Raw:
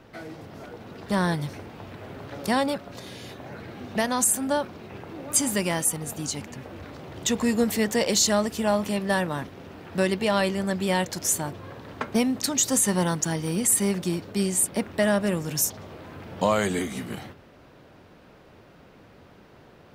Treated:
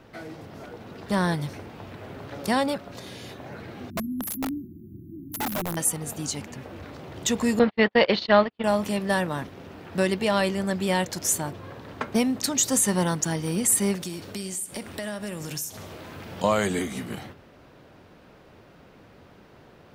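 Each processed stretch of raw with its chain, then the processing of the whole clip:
3.90–5.77 s: brick-wall FIR band-stop 370–11000 Hz + integer overflow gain 24 dB
7.59–8.64 s: boxcar filter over 5 samples + gate -26 dBFS, range -46 dB + FFT filter 150 Hz 0 dB, 960 Hz +8 dB, 3.2 kHz +9 dB, 4.6 kHz +4 dB, 7.5 kHz -27 dB
13.95–16.44 s: treble shelf 2.6 kHz +8.5 dB + compression, threshold -30 dBFS + feedback delay 62 ms, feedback 60%, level -17 dB
whole clip: none

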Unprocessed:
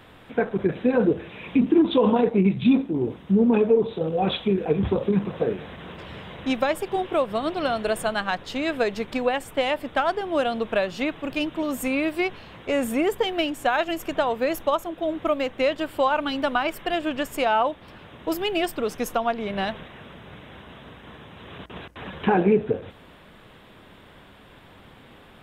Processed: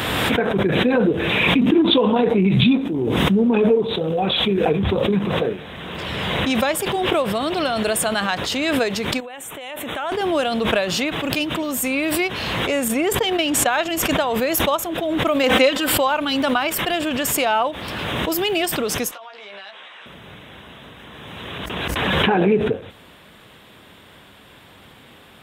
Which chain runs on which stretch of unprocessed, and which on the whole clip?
9.20–10.12 s: bass shelf 180 Hz -9.5 dB + compression 4:1, threshold -37 dBFS + Butterworth band-stop 4.8 kHz, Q 2.3
12.88–14.11 s: gate -27 dBFS, range -9 dB + treble shelf 11 kHz -9.5 dB
15.43–15.92 s: bass shelf 120 Hz -9 dB + comb 3.9 ms, depth 89%
19.11–20.06 s: band-pass 790–6400 Hz + compression 4:1, threshold -41 dBFS + doubling 15 ms -4 dB
whole clip: high-pass 54 Hz; treble shelf 3.1 kHz +10 dB; swell ahead of each attack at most 21 dB/s; trim +1 dB

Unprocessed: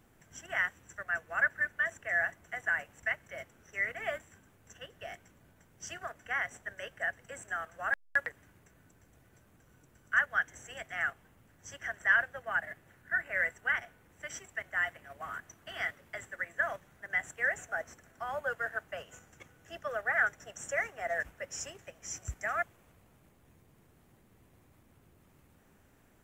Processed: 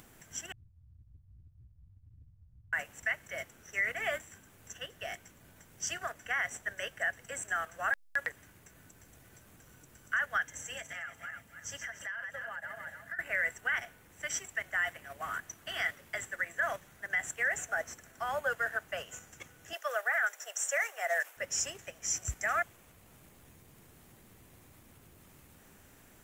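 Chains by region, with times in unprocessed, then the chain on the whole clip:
0.52–2.73 s: inverse Chebyshev low-pass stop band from 610 Hz, stop band 80 dB + waveshaping leveller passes 1
10.44–13.19 s: backward echo that repeats 145 ms, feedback 45%, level -8 dB + compression 8:1, threshold -40 dBFS + comb of notches 370 Hz
19.73–21.37 s: high-pass 500 Hz 24 dB/octave + treble shelf 10 kHz +7.5 dB
whole clip: treble shelf 2.5 kHz +8.5 dB; peak limiter -23 dBFS; upward compressor, threshold -54 dBFS; trim +1.5 dB

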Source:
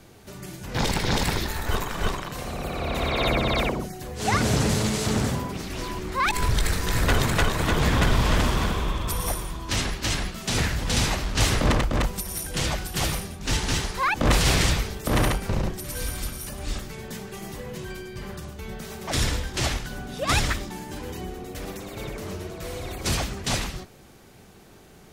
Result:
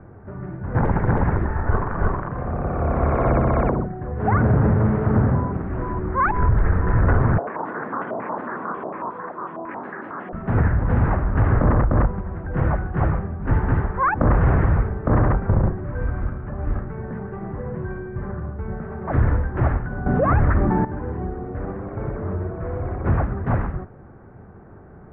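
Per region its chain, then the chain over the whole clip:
7.38–10.33 s: high-pass 230 Hz 24 dB/octave + compression 4:1, threshold -33 dBFS + step-sequenced low-pass 11 Hz 670–6000 Hz
20.06–20.85 s: treble shelf 6 kHz -10 dB + level flattener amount 70%
whole clip: steep low-pass 1.6 kHz 36 dB/octave; peaking EQ 96 Hz +6.5 dB 1.1 oct; loudness maximiser +13 dB; trim -8 dB

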